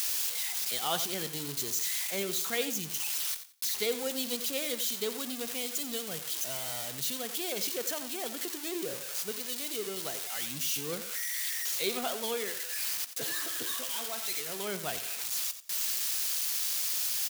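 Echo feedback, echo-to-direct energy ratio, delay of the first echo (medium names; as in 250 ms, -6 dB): 22%, -12.0 dB, 89 ms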